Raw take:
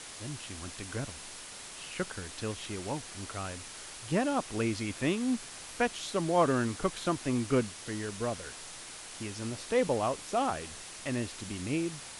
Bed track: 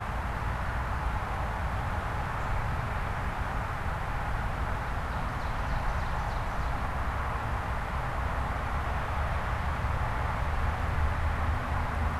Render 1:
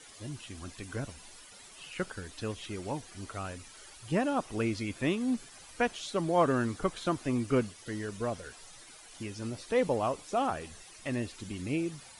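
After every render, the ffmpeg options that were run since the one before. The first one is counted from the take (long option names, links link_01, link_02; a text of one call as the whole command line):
ffmpeg -i in.wav -af "afftdn=noise_reduction=12:noise_floor=-46" out.wav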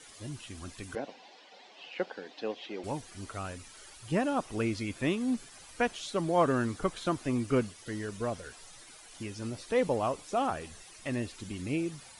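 ffmpeg -i in.wav -filter_complex "[0:a]asettb=1/sr,asplit=3[link_01][link_02][link_03];[link_01]atrim=end=0.954[link_04];[link_02]atrim=start=0.95:end=2.84,asetpts=PTS-STARTPTS,afade=type=in:duration=0.004:curve=qsin,afade=type=out:start_time=1.886:duration=0.004:curve=qsin,highpass=frequency=230:width=0.5412,highpass=frequency=230:width=1.3066,equalizer=frequency=510:width_type=q:width=4:gain=6,equalizer=frequency=770:width_type=q:width=4:gain=10,equalizer=frequency=1300:width_type=q:width=4:gain=-7,lowpass=frequency=4600:width=0.5412,lowpass=frequency=4600:width=1.3066[link_05];[link_03]atrim=start=2.836[link_06];[link_04][link_05]acrossfade=duration=0.004:curve1=hsin:curve2=qsin[link_07];[link_07][link_06]acrossfade=duration=0.004:curve1=qsin:curve2=hsin" out.wav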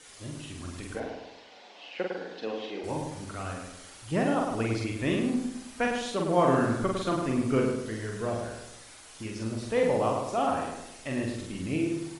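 ffmpeg -i in.wav -filter_complex "[0:a]asplit=2[link_01][link_02];[link_02]adelay=45,volume=-2.5dB[link_03];[link_01][link_03]amix=inputs=2:normalize=0,asplit=2[link_04][link_05];[link_05]adelay=104,lowpass=frequency=2100:poles=1,volume=-4dB,asplit=2[link_06][link_07];[link_07]adelay=104,lowpass=frequency=2100:poles=1,volume=0.48,asplit=2[link_08][link_09];[link_09]adelay=104,lowpass=frequency=2100:poles=1,volume=0.48,asplit=2[link_10][link_11];[link_11]adelay=104,lowpass=frequency=2100:poles=1,volume=0.48,asplit=2[link_12][link_13];[link_13]adelay=104,lowpass=frequency=2100:poles=1,volume=0.48,asplit=2[link_14][link_15];[link_15]adelay=104,lowpass=frequency=2100:poles=1,volume=0.48[link_16];[link_04][link_06][link_08][link_10][link_12][link_14][link_16]amix=inputs=7:normalize=0" out.wav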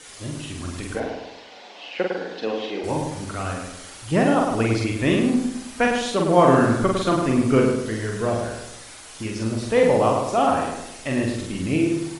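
ffmpeg -i in.wav -af "volume=8dB" out.wav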